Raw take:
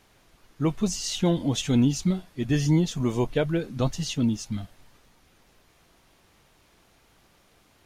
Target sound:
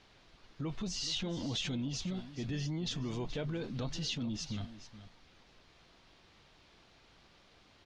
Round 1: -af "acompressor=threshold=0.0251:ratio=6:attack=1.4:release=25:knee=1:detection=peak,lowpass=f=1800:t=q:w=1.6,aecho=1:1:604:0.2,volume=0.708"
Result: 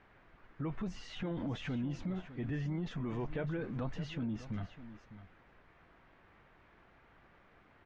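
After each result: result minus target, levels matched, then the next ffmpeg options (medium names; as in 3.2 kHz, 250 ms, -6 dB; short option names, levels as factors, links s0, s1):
4 kHz band -12.0 dB; echo 178 ms late
-af "acompressor=threshold=0.0251:ratio=6:attack=1.4:release=25:knee=1:detection=peak,lowpass=f=4400:t=q:w=1.6,aecho=1:1:604:0.2,volume=0.708"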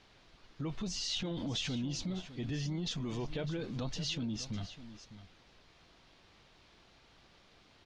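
echo 178 ms late
-af "acompressor=threshold=0.0251:ratio=6:attack=1.4:release=25:knee=1:detection=peak,lowpass=f=4400:t=q:w=1.6,aecho=1:1:426:0.2,volume=0.708"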